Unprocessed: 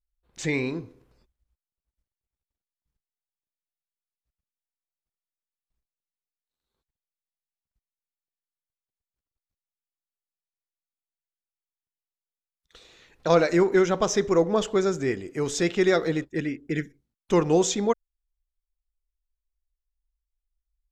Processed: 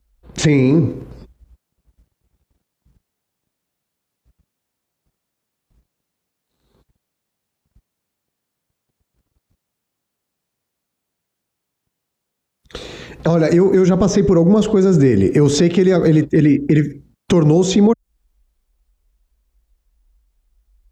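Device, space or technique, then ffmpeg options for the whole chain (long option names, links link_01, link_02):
mastering chain: -filter_complex "[0:a]highpass=46,equalizer=frequency=170:width_type=o:width=1.4:gain=3,acrossover=split=280|6000[link_01][link_02][link_03];[link_01]acompressor=threshold=-32dB:ratio=4[link_04];[link_02]acompressor=threshold=-32dB:ratio=4[link_05];[link_03]acompressor=threshold=-51dB:ratio=4[link_06];[link_04][link_05][link_06]amix=inputs=3:normalize=0,acompressor=threshold=-31dB:ratio=3,asoftclip=type=tanh:threshold=-16dB,tiltshelf=frequency=780:gain=5.5,alimiter=level_in=26dB:limit=-1dB:release=50:level=0:latency=1,volume=-4dB"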